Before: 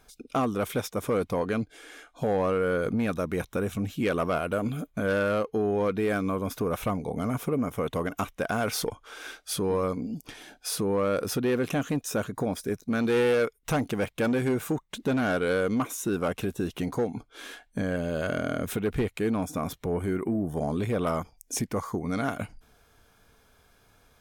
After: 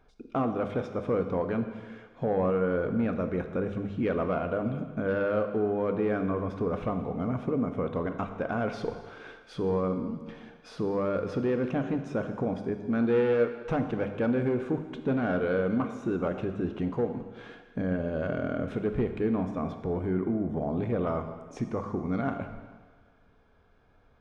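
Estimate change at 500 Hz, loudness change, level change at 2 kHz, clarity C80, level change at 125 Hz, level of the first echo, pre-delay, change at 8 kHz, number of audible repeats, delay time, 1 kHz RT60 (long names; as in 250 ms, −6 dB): −1.0 dB, −1.0 dB, −5.0 dB, 9.5 dB, −1.0 dB, no echo audible, 18 ms, below −20 dB, no echo audible, no echo audible, 1.6 s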